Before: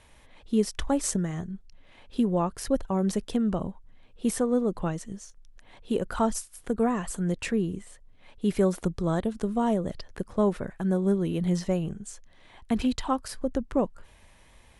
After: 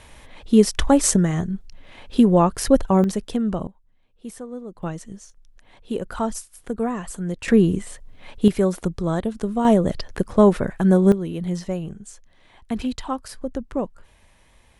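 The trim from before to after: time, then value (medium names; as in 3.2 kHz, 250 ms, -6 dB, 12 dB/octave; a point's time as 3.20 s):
+10 dB
from 3.04 s +3 dB
from 3.67 s -9.5 dB
from 4.83 s +0.5 dB
from 7.48 s +11.5 dB
from 8.48 s +3.5 dB
from 9.65 s +10 dB
from 11.12 s 0 dB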